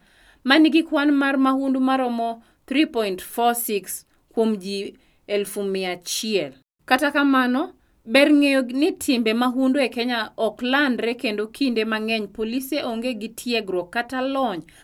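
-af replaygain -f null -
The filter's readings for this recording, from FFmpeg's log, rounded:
track_gain = +1.1 dB
track_peak = 0.558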